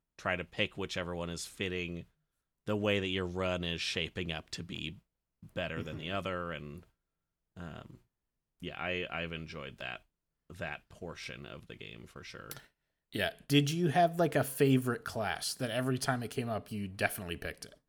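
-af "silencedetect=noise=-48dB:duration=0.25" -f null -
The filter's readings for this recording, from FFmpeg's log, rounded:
silence_start: 2.03
silence_end: 2.67 | silence_duration: 0.64
silence_start: 4.96
silence_end: 5.43 | silence_duration: 0.47
silence_start: 6.83
silence_end: 7.57 | silence_duration: 0.73
silence_start: 7.95
silence_end: 8.60 | silence_duration: 0.65
silence_start: 9.97
silence_end: 10.50 | silence_duration: 0.53
silence_start: 12.65
silence_end: 13.13 | silence_duration: 0.48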